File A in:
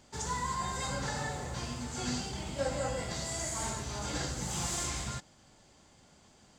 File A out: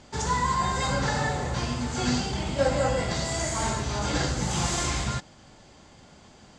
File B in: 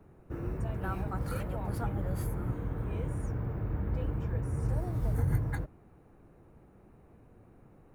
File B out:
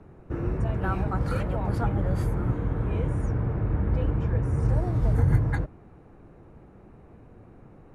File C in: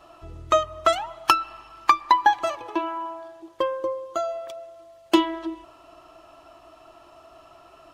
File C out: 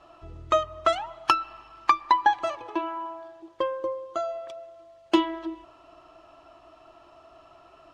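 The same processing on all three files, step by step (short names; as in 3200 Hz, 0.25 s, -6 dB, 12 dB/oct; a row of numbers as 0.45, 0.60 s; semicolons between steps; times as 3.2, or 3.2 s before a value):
air absorption 66 m; match loudness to -27 LUFS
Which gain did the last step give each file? +10.0, +7.5, -2.5 dB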